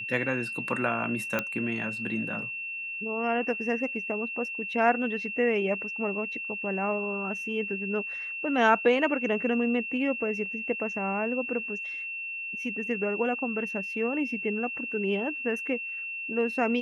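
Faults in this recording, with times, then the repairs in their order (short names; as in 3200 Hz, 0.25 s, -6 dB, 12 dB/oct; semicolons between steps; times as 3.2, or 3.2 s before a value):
tone 2700 Hz -33 dBFS
1.39 pop -13 dBFS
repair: de-click; notch 2700 Hz, Q 30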